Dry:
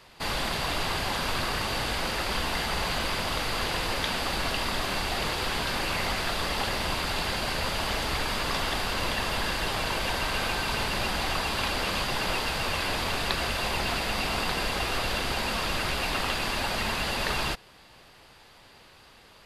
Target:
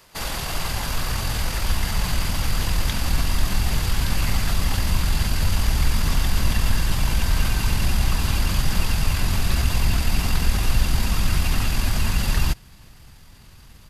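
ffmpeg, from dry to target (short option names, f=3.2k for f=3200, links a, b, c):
-af "asubboost=boost=7.5:cutoff=170,aexciter=amount=2:drive=7.3:freq=5.5k,atempo=1.4"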